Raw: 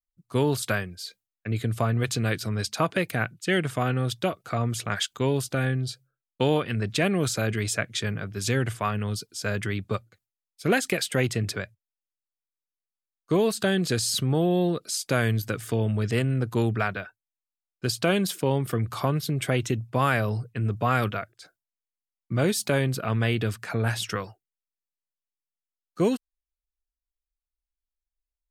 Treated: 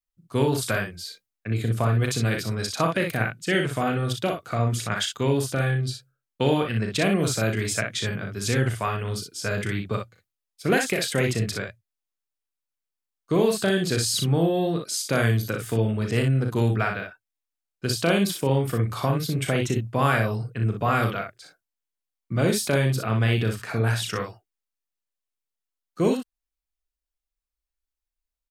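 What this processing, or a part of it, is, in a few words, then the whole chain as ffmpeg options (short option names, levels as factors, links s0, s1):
slapback doubling: -filter_complex "[0:a]asplit=3[s0][s1][s2];[s1]adelay=36,volume=0.447[s3];[s2]adelay=60,volume=0.531[s4];[s0][s3][s4]amix=inputs=3:normalize=0"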